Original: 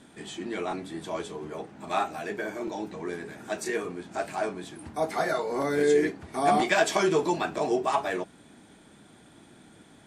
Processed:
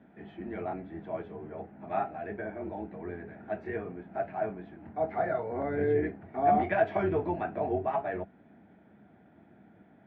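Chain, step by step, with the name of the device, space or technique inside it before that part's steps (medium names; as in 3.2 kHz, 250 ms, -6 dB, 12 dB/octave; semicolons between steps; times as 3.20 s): sub-octave bass pedal (octave divider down 2 oct, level -4 dB; cabinet simulation 89–2100 Hz, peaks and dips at 89 Hz +4 dB, 200 Hz +6 dB, 690 Hz +7 dB, 1.1 kHz -7 dB); trim -6 dB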